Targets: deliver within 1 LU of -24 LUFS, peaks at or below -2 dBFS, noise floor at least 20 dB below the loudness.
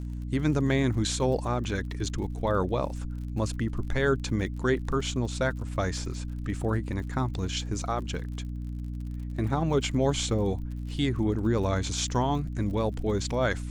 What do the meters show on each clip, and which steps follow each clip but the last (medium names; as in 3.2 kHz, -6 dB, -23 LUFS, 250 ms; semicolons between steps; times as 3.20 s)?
tick rate 53 per s; hum 60 Hz; highest harmonic 300 Hz; hum level -32 dBFS; loudness -29.0 LUFS; peak level -12.0 dBFS; loudness target -24.0 LUFS
-> de-click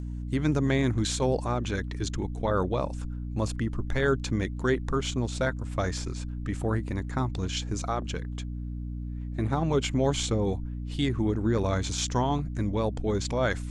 tick rate 0.073 per s; hum 60 Hz; highest harmonic 300 Hz; hum level -32 dBFS
-> hum notches 60/120/180/240/300 Hz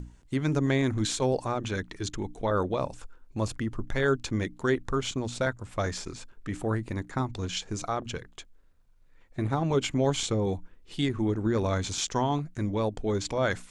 hum not found; loudness -29.5 LUFS; peak level -13.0 dBFS; loudness target -24.0 LUFS
-> trim +5.5 dB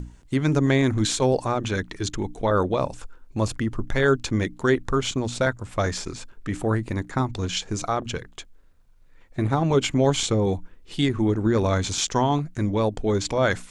loudness -24.0 LUFS; peak level -7.5 dBFS; noise floor -52 dBFS